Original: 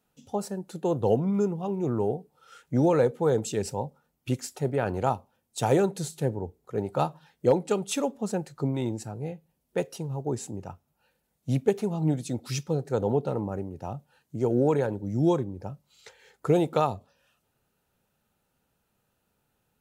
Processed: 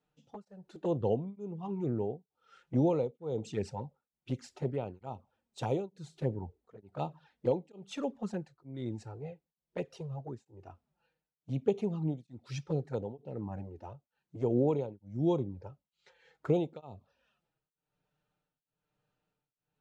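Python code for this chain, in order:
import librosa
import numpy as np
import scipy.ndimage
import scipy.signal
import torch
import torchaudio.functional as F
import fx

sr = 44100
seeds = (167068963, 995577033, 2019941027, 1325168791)

y = scipy.signal.sosfilt(scipy.signal.butter(2, 4300.0, 'lowpass', fs=sr, output='sos'), x)
y = fx.env_flanger(y, sr, rest_ms=6.7, full_db=-22.0)
y = y * np.abs(np.cos(np.pi * 1.1 * np.arange(len(y)) / sr))
y = F.gain(torch.from_numpy(y), -3.5).numpy()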